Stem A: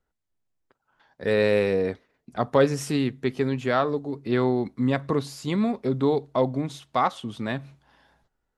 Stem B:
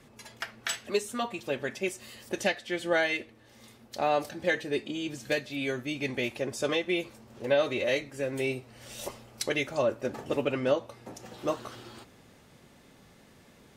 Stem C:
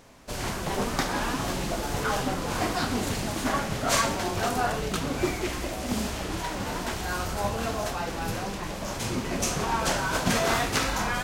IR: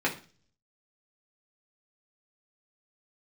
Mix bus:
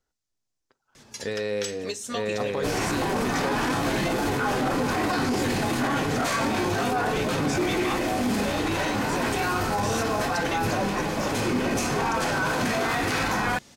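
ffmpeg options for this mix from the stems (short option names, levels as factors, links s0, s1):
-filter_complex "[0:a]volume=0.668,asplit=3[s0][s1][s2];[s1]volume=0.0631[s3];[s2]volume=0.631[s4];[1:a]adelay=950,volume=1.26[s5];[2:a]adelay=2350,volume=0.841,asplit=2[s6][s7];[s7]volume=0.631[s8];[s0][s5]amix=inputs=2:normalize=0,equalizer=f=5800:t=o:w=1.4:g=13,acompressor=threshold=0.0398:ratio=10,volume=1[s9];[3:a]atrim=start_sample=2205[s10];[s3][s8]amix=inputs=2:normalize=0[s11];[s11][s10]afir=irnorm=-1:irlink=0[s12];[s4]aecho=0:1:890:1[s13];[s6][s9][s12][s13]amix=inputs=4:normalize=0,alimiter=limit=0.141:level=0:latency=1:release=15"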